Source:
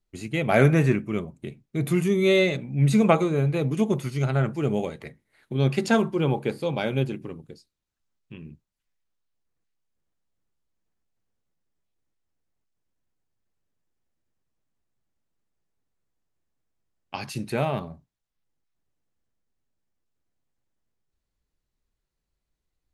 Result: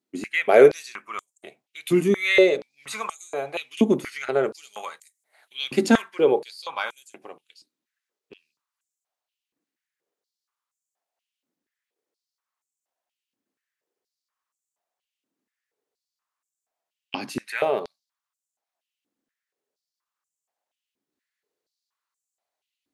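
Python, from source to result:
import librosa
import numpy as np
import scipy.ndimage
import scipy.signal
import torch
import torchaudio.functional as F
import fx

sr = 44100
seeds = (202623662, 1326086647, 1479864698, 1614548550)

y = fx.high_shelf(x, sr, hz=5500.0, db=6.0, at=(4.43, 6.02))
y = fx.filter_held_highpass(y, sr, hz=4.2, low_hz=270.0, high_hz=7300.0)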